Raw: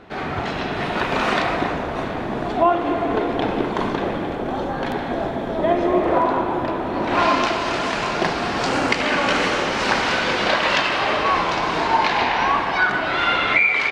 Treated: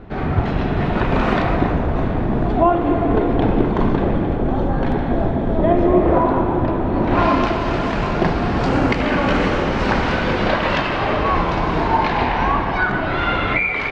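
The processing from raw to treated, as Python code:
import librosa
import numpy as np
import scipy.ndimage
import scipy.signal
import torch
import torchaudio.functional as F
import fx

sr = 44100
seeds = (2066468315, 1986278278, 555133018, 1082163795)

y = fx.riaa(x, sr, side='playback')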